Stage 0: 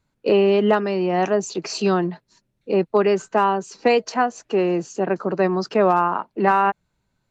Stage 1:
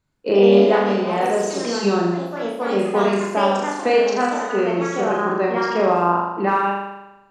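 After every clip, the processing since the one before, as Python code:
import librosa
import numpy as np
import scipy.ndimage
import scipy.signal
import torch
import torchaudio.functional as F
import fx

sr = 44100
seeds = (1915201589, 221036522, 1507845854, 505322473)

y = fx.room_flutter(x, sr, wall_m=6.9, rt60_s=1.0)
y = fx.echo_pitch(y, sr, ms=122, semitones=3, count=3, db_per_echo=-6.0)
y = F.gain(torch.from_numpy(y), -3.5).numpy()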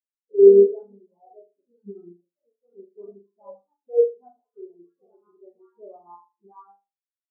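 y = fx.dispersion(x, sr, late='highs', ms=47.0, hz=350.0)
y = fx.spectral_expand(y, sr, expansion=4.0)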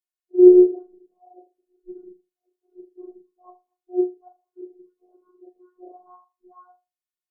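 y = fx.robotise(x, sr, hz=362.0)
y = F.gain(torch.from_numpy(y), 1.5).numpy()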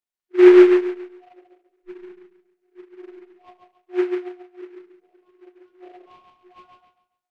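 y = fx.echo_feedback(x, sr, ms=139, feedback_pct=33, wet_db=-4.5)
y = fx.noise_mod_delay(y, sr, seeds[0], noise_hz=1500.0, depth_ms=0.053)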